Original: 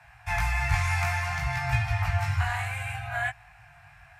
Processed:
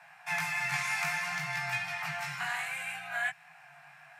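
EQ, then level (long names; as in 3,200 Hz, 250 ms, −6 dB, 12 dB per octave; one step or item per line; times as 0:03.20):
Butterworth high-pass 150 Hz 72 dB per octave
dynamic equaliser 740 Hz, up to −7 dB, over −46 dBFS, Q 0.9
0.0 dB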